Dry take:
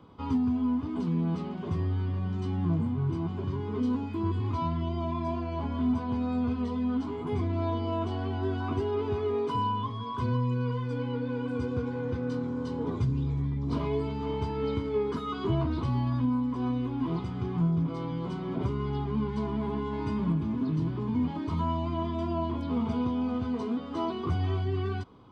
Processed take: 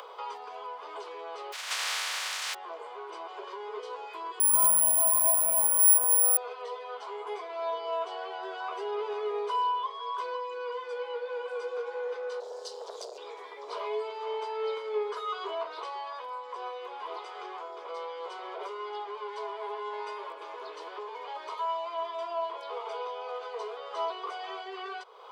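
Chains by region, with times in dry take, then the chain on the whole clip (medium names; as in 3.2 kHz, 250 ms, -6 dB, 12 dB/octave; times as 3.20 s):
1.52–2.53 s: spectral contrast reduction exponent 0.15 + high-pass 1.1 kHz + distance through air 66 m
4.40–6.37 s: low-pass 2.3 kHz + careless resampling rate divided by 4×, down none, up zero stuff
12.40–13.18 s: FFT filter 100 Hz 0 dB, 230 Hz +13 dB, 380 Hz -30 dB, 610 Hz -5 dB, 2.2 kHz -10 dB, 4.8 kHz +14 dB + valve stage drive 25 dB, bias 0.7
whole clip: steep high-pass 430 Hz 72 dB/octave; upward compressor, threshold -37 dBFS; trim +2 dB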